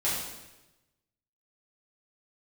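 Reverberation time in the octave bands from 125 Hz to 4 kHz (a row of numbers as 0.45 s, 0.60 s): 1.3 s, 1.1 s, 1.1 s, 0.95 s, 1.0 s, 0.95 s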